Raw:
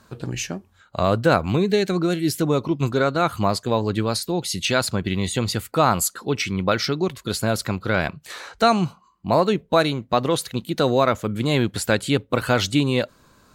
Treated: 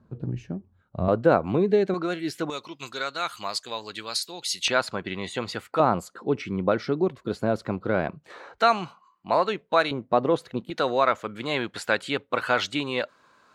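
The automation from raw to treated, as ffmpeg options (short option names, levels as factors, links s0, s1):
-af "asetnsamples=n=441:p=0,asendcmd='1.08 bandpass f 480;1.94 bandpass f 1200;2.5 bandpass f 4200;4.68 bandpass f 1100;5.8 bandpass f 420;8.58 bandpass f 1500;9.91 bandpass f 500;10.7 bandpass f 1400',bandpass=f=140:t=q:w=0.62:csg=0"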